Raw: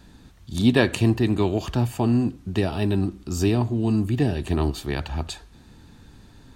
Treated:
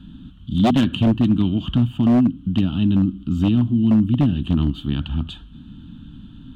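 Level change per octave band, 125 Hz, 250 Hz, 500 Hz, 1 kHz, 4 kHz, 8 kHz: +3.5 dB, +6.0 dB, -5.0 dB, +1.5 dB, +2.0 dB, under -10 dB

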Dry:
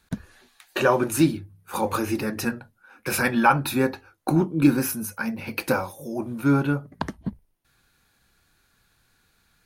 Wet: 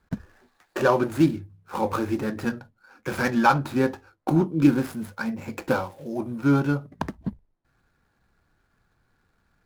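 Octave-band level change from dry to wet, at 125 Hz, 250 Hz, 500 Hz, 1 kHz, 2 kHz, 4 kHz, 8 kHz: 0.0 dB, 0.0 dB, 0.0 dB, -0.5 dB, -2.5 dB, -4.5 dB, -11.5 dB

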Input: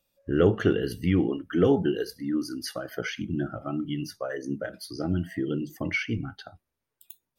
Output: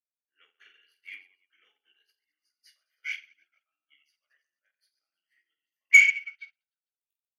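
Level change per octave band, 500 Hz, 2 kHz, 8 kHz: under -40 dB, +11.5 dB, +5.5 dB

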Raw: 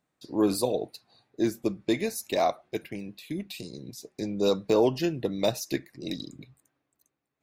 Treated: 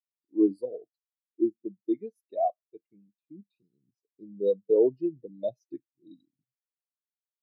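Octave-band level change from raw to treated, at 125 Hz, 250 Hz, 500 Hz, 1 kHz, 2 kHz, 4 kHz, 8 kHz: under -15 dB, -1.5 dB, -1.0 dB, -3.5 dB, under -35 dB, under -25 dB, under -35 dB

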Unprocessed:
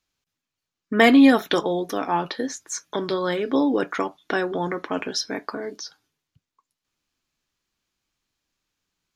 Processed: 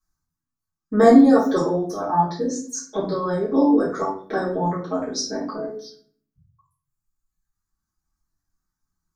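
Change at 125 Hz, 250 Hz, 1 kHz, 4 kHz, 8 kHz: +6.0 dB, +2.0 dB, +3.0 dB, -6.0 dB, +1.5 dB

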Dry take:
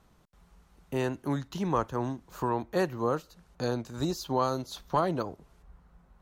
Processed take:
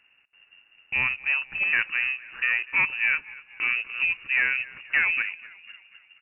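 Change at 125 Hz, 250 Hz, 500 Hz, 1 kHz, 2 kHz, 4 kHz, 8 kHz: under -15 dB, under -20 dB, under -20 dB, -8.5 dB, +22.5 dB, +6.0 dB, under -35 dB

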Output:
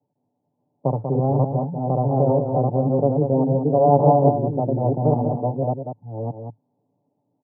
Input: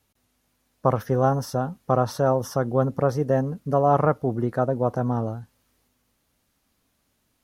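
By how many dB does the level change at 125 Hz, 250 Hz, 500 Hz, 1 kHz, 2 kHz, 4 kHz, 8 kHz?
+5.5 dB, +5.0 dB, +3.5 dB, +3.0 dB, under -30 dB, under -35 dB, under -35 dB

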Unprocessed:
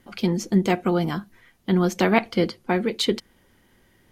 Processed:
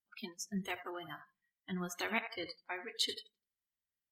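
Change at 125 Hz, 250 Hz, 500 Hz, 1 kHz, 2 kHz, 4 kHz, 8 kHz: -22.0 dB, -22.0 dB, -22.0 dB, -17.0 dB, -11.0 dB, -9.0 dB, -8.5 dB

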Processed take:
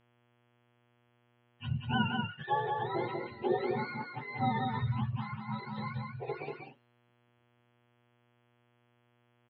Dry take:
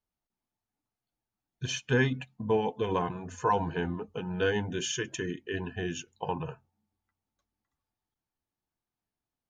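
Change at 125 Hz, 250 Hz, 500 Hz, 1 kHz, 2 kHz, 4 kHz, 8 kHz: -1.0 dB, -3.0 dB, -6.5 dB, -0.5 dB, -4.5 dB, -5.5 dB, under -40 dB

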